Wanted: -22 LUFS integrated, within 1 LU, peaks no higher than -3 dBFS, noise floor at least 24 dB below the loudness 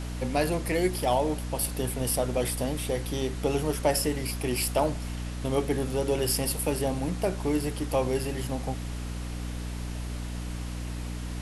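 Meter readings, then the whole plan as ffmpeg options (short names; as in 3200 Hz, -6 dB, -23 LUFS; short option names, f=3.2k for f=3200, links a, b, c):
hum 60 Hz; harmonics up to 300 Hz; hum level -32 dBFS; noise floor -35 dBFS; noise floor target -53 dBFS; loudness -29.0 LUFS; peak -12.0 dBFS; loudness target -22.0 LUFS
-> -af "bandreject=f=60:t=h:w=6,bandreject=f=120:t=h:w=6,bandreject=f=180:t=h:w=6,bandreject=f=240:t=h:w=6,bandreject=f=300:t=h:w=6"
-af "afftdn=nr=18:nf=-35"
-af "volume=7dB"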